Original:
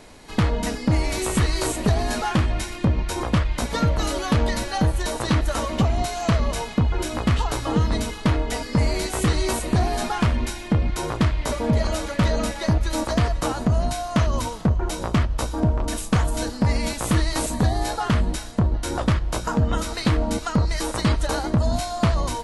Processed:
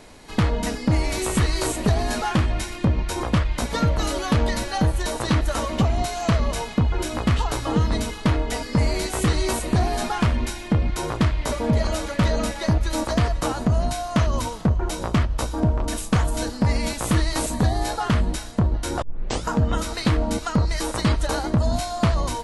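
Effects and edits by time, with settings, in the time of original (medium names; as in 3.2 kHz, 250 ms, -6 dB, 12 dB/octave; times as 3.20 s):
19.02 s: tape start 0.42 s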